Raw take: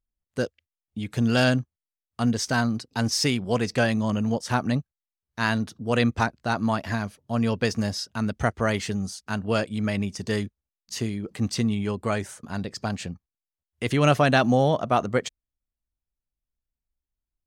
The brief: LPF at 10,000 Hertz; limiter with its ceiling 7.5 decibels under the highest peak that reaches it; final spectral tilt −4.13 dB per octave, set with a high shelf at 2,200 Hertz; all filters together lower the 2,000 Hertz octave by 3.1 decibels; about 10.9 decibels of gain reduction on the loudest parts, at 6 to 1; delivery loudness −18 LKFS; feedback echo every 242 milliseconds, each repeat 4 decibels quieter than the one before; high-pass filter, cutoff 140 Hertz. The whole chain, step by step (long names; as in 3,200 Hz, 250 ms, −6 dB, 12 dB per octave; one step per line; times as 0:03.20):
high-pass filter 140 Hz
low-pass filter 10,000 Hz
parametric band 2,000 Hz −8.5 dB
high-shelf EQ 2,200 Hz +7 dB
downward compressor 6 to 1, threshold −27 dBFS
brickwall limiter −20.5 dBFS
repeating echo 242 ms, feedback 63%, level −4 dB
level +14 dB